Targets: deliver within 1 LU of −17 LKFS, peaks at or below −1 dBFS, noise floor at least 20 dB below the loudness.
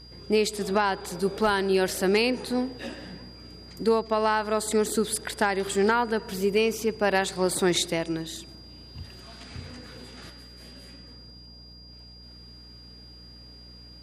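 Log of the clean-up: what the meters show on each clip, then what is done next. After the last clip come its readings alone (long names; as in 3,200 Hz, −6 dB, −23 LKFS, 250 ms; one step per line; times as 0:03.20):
mains hum 60 Hz; hum harmonics up to 300 Hz; level of the hum −48 dBFS; interfering tone 4,800 Hz; level of the tone −48 dBFS; integrated loudness −25.5 LKFS; sample peak −11.5 dBFS; target loudness −17.0 LKFS
→ hum removal 60 Hz, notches 5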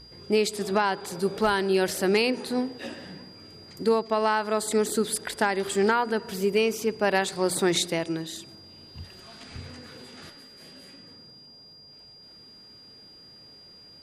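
mains hum none found; interfering tone 4,800 Hz; level of the tone −48 dBFS
→ notch filter 4,800 Hz, Q 30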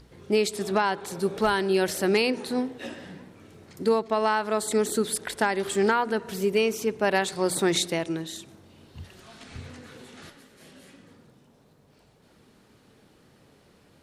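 interfering tone none found; integrated loudness −25.5 LKFS; sample peak −11.5 dBFS; target loudness −17.0 LKFS
→ level +8.5 dB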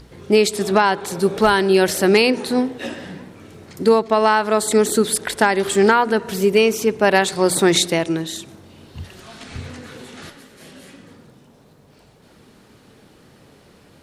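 integrated loudness −17.0 LKFS; sample peak −3.0 dBFS; background noise floor −51 dBFS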